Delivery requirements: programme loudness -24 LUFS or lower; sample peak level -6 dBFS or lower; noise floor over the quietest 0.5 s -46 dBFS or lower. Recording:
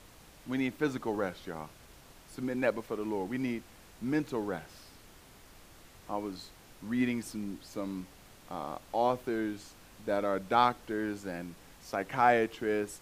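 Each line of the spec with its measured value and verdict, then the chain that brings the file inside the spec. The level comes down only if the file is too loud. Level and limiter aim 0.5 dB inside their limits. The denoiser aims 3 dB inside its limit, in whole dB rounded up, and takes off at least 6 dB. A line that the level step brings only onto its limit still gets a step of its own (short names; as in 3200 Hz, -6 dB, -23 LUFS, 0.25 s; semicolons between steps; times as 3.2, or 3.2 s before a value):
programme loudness -33.5 LUFS: OK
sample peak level -10.5 dBFS: OK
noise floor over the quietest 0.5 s -55 dBFS: OK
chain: none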